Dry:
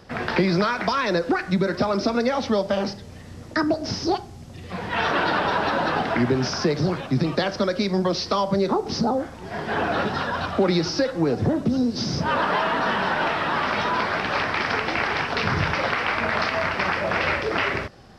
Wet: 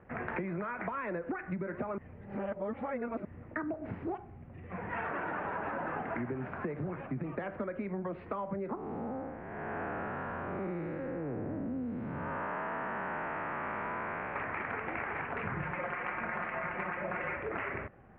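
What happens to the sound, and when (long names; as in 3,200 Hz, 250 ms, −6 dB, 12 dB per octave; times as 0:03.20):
0:01.98–0:03.25: reverse
0:08.75–0:14.36: spectrum smeared in time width 296 ms
0:15.55–0:17.37: comb filter 5.6 ms
whole clip: Butterworth low-pass 2,400 Hz 48 dB per octave; downward compressor, threshold −24 dBFS; level −9 dB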